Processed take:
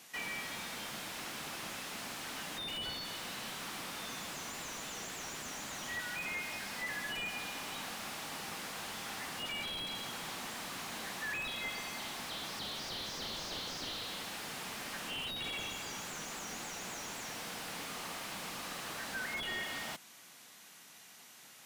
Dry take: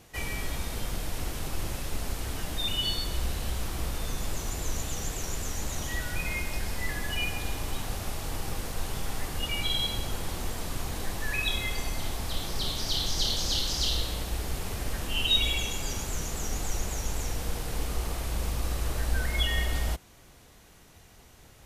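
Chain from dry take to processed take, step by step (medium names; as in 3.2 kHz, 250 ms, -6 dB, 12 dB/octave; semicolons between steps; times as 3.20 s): high-pass 210 Hz 24 dB/octave; peaking EQ 400 Hz -14 dB 2 oct; in parallel at -1 dB: compression, threshold -40 dBFS, peak gain reduction 18 dB; on the sum: slew-rate limiter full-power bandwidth 43 Hz; trim -2 dB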